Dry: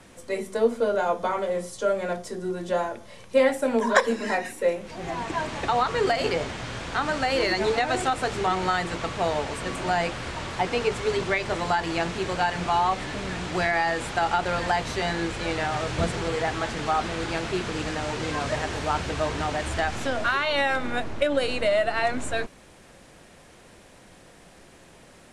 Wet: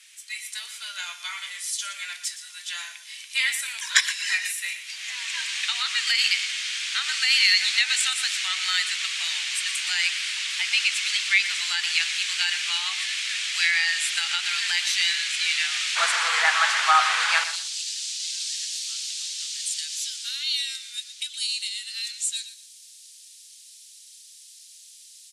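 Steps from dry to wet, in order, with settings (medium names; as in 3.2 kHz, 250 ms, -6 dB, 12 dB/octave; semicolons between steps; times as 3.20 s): inverse Chebyshev high-pass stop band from 390 Hz, stop band 80 dB, from 15.95 s stop band from 190 Hz, from 17.43 s stop band from 710 Hz; level rider gain up to 6 dB; feedback delay 119 ms, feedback 21%, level -12 dB; trim +6.5 dB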